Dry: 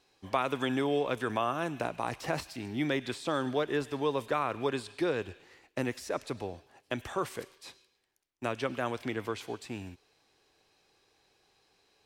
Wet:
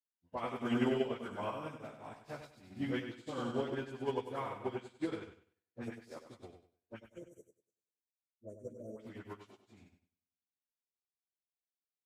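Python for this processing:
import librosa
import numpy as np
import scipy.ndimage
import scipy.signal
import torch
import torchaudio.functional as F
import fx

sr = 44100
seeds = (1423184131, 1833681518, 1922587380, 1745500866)

p1 = fx.pitch_bins(x, sr, semitones=-1.5)
p2 = fx.spec_erase(p1, sr, start_s=7.0, length_s=1.95, low_hz=680.0, high_hz=5700.0)
p3 = np.clip(10.0 ** (28.5 / 20.0) * p2, -1.0, 1.0) / 10.0 ** (28.5 / 20.0)
p4 = p2 + (p3 * 10.0 ** (-8.0 / 20.0))
p5 = fx.dispersion(p4, sr, late='highs', ms=60.0, hz=1300.0)
p6 = p5 + fx.echo_feedback(p5, sr, ms=97, feedback_pct=56, wet_db=-4.0, dry=0)
p7 = fx.upward_expand(p6, sr, threshold_db=-51.0, expansion=2.5)
y = p7 * 10.0 ** (-3.5 / 20.0)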